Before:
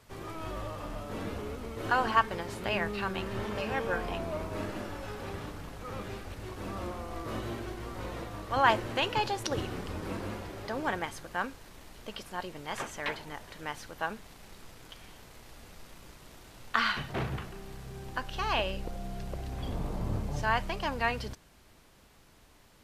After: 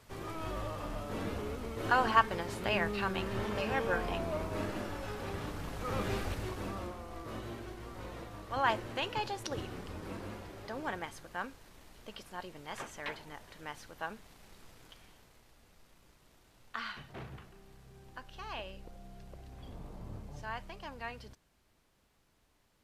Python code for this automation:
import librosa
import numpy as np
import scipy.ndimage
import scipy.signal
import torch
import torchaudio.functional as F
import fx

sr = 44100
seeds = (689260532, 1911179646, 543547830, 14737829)

y = fx.gain(x, sr, db=fx.line((5.32, -0.5), (6.24, 6.5), (6.97, -6.0), (14.84, -6.0), (15.55, -12.5)))